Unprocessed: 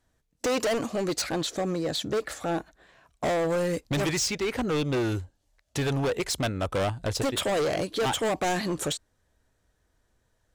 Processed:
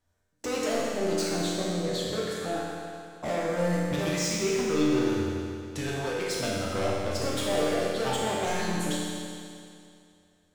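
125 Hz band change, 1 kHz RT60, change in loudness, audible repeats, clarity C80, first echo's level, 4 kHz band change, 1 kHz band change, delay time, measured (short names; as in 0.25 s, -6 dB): -2.0 dB, 2.4 s, -1.0 dB, none, -0.5 dB, none, -1.5 dB, -1.5 dB, none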